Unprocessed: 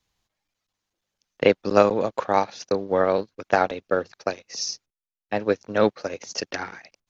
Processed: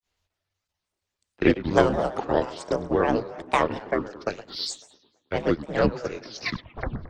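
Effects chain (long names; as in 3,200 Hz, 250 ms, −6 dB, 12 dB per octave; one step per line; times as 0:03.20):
turntable brake at the end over 1.04 s
tape delay 111 ms, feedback 65%, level −15 dB, low-pass 4,500 Hz
granular cloud 160 ms, grains 20 per second, spray 11 ms, pitch spread up and down by 7 semitones
frequency shifter −96 Hz
level +1.5 dB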